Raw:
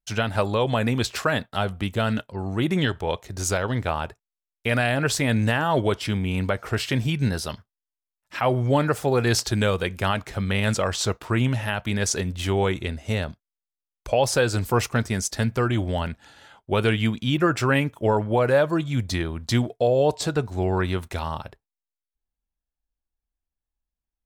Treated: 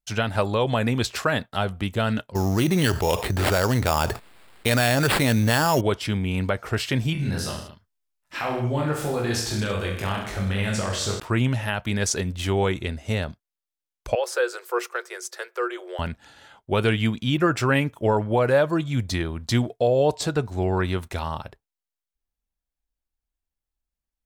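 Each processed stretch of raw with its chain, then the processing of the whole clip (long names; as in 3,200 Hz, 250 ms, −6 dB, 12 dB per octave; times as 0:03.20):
0:02.35–0:05.81: sample-rate reduction 6,100 Hz + envelope flattener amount 70%
0:07.13–0:11.20: downward compressor 2.5 to 1, threshold −29 dBFS + reverse bouncing-ball delay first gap 20 ms, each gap 1.1×, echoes 8, each echo −2 dB
0:14.15–0:15.99: Chebyshev high-pass with heavy ripple 350 Hz, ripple 9 dB + high-shelf EQ 12,000 Hz +6 dB
whole clip: no processing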